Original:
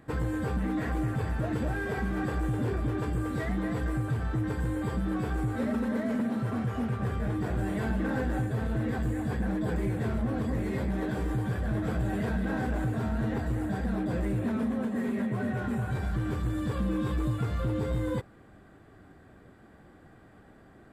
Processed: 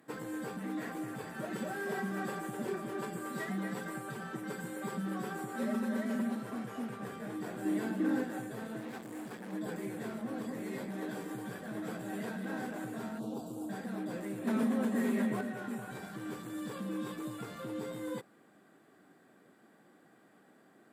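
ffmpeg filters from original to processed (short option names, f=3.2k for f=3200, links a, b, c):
-filter_complex "[0:a]asettb=1/sr,asplit=3[a][b][c];[a]atrim=end=1.344[d];[b]atrim=start=1.34:end=6.35,asetpts=PTS-STARTPTS,afade=t=in:d=0.004:c=qsin,afade=t=out:st=5.006:d=0.004:c=qsin,aecho=1:1:5.2:0.85,atrim=end_sample=220941[e];[c]atrim=start=6.346[f];[d][e]acrossfade=d=0.004:c1=hsin:c2=qsin[g];[g][f]acrossfade=d=0.004:c1=qsin:c2=hsin,asettb=1/sr,asplit=3[h][i][j];[h]atrim=end=7.654[k];[i]atrim=start=7.65:end=8.24,asetpts=PTS-STARTPTS,afade=t=in:d=0.004:c=qsin,afade=t=out:st=0.586:d=0.004:c=qsin,equalizer=f=300:t=o:w=0.51:g=11.5[l];[j]atrim=start=8.236[m];[k][l]acrossfade=d=0.004:c1=hsin:c2=qsin[n];[n][m]acrossfade=d=0.004:c1=qsin:c2=hsin,asettb=1/sr,asplit=3[o][p][q];[o]atrim=end=8.804[r];[p]atrim=start=8.8:end=9.53,asetpts=PTS-STARTPTS,afade=t=in:d=0.004:c=qsin,afade=t=out:st=0.726:d=0.004:c=qsin,asoftclip=type=hard:threshold=-32dB[s];[q]atrim=start=9.526[t];[r][s]acrossfade=d=0.004:c1=hsin:c2=qsin[u];[u][t]acrossfade=d=0.004:c1=qsin:c2=hsin,asplit=3[v][w][x];[v]afade=t=out:st=13.18:d=0.02[y];[w]asuperstop=centerf=1900:order=4:qfactor=0.83,afade=t=in:st=13.18:d=0.02,afade=t=out:st=13.68:d=0.02[z];[x]afade=t=in:st=13.68:d=0.02[aa];[y][z][aa]amix=inputs=3:normalize=0,asettb=1/sr,asplit=3[ab][ac][ad];[ab]atrim=end=14.474[ae];[ac]atrim=start=14.47:end=15.41,asetpts=PTS-STARTPTS,afade=t=in:d=0.004:c=qsin,afade=t=out:st=0.936:d=0.004:c=qsin,acontrast=69[af];[ad]atrim=start=15.406[ag];[ae][af]acrossfade=d=0.004:c1=hsin:c2=qsin[ah];[ah][ag]acrossfade=d=0.004:c1=qsin:c2=hsin,highpass=f=180:w=0.5412,highpass=f=180:w=1.3066,aemphasis=mode=production:type=cd,volume=-6.5dB"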